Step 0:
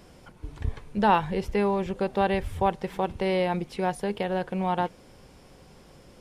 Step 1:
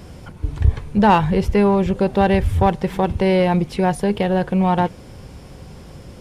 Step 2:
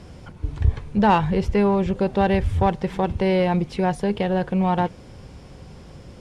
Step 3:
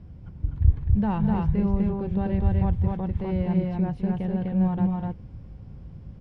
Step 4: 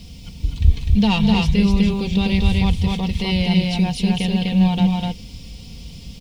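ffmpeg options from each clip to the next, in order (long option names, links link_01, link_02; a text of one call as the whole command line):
ffmpeg -i in.wav -filter_complex "[0:a]equalizer=frequency=84:width_type=o:width=2.3:gain=10,asplit=2[link_01][link_02];[link_02]asoftclip=type=tanh:threshold=-23dB,volume=-3dB[link_03];[link_01][link_03]amix=inputs=2:normalize=0,volume=4dB" out.wav
ffmpeg -i in.wav -af "lowpass=8300,volume=-3.5dB" out.wav
ffmpeg -i in.wav -filter_complex "[0:a]firequalizer=gain_entry='entry(110,0);entry(410,-14);entry(7500,-30)':delay=0.05:min_phase=1,asplit=2[link_01][link_02];[link_02]aecho=0:1:212.8|250.7:0.282|0.794[link_03];[link_01][link_03]amix=inputs=2:normalize=0" out.wav
ffmpeg -i in.wav -af "aecho=1:1:4.3:0.54,aexciter=amount=14.8:drive=7.9:freq=2500,volume=5dB" out.wav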